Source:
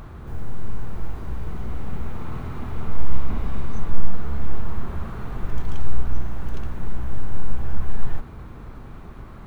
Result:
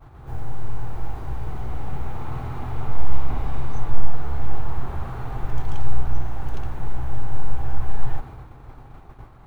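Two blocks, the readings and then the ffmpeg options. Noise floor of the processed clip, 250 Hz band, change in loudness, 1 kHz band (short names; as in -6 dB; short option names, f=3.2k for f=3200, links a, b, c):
-45 dBFS, -3.0 dB, +1.0 dB, +4.0 dB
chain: -af "agate=range=-33dB:threshold=-32dB:ratio=3:detection=peak,equalizer=f=125:t=o:w=0.33:g=6,equalizer=f=200:t=o:w=0.33:g=-11,equalizer=f=800:t=o:w=0.33:g=9"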